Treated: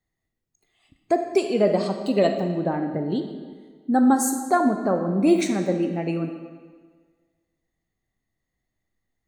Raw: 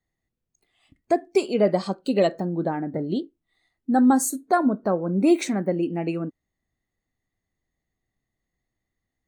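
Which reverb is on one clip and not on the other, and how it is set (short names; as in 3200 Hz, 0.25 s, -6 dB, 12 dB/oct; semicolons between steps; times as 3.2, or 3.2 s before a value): digital reverb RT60 1.6 s, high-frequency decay 0.85×, pre-delay 5 ms, DRR 6 dB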